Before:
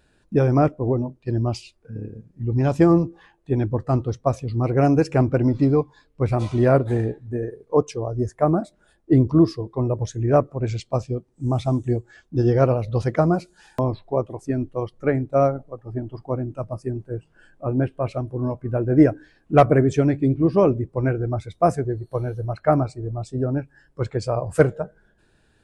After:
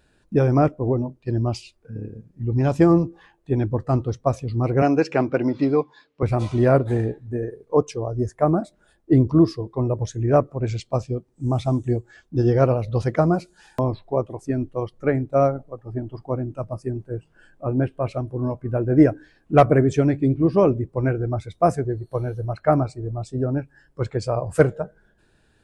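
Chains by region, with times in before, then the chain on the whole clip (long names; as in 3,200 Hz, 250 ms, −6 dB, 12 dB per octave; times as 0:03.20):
0:04.82–0:06.23: band-pass filter 220–5,200 Hz + parametric band 3,100 Hz +5.5 dB 2.3 octaves
whole clip: no processing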